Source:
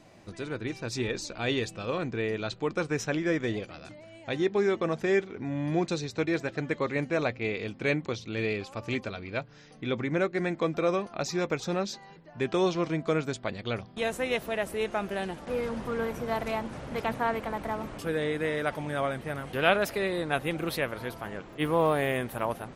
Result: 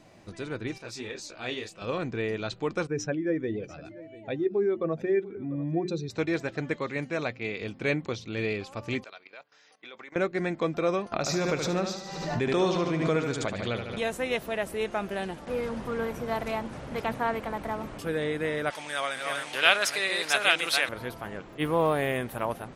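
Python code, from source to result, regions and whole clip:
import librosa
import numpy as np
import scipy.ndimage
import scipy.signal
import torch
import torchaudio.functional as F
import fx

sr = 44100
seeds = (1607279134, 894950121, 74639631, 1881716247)

y = fx.chain(x, sr, fx.low_shelf(hz=260.0, db=-10.5),
    fx.detune_double(cents=59), at=(0.78, 1.82))
y = fx.chain(y, sr, fx.spec_expand(power=1.6),
    fx.hum_notches(base_hz=60, count=6),
    fx.echo_single(ms=693, db=-19.0), at=(2.87, 6.1))
y = fx.chain(y, sr, fx.highpass(hz=110.0, slope=12),
    fx.peak_eq(hz=490.0, db=-3.5, octaves=2.9), at=(6.76, 7.62))
y = fx.chain(y, sr, fx.highpass(hz=690.0, slope=12),
    fx.level_steps(step_db=15), at=(9.04, 10.16))
y = fx.chain(y, sr, fx.echo_feedback(ms=74, feedback_pct=53, wet_db=-6.5),
    fx.pre_swell(db_per_s=41.0), at=(11.12, 14.01))
y = fx.chain(y, sr, fx.reverse_delay(ms=464, wet_db=-3.0),
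    fx.weighting(curve='ITU-R 468'), at=(18.7, 20.89))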